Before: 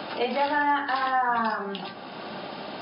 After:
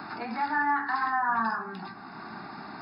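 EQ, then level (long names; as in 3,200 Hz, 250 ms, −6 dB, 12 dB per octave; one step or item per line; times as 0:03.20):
mains-hum notches 50/100/150/200 Hz
phaser with its sweep stopped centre 1,300 Hz, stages 4
0.0 dB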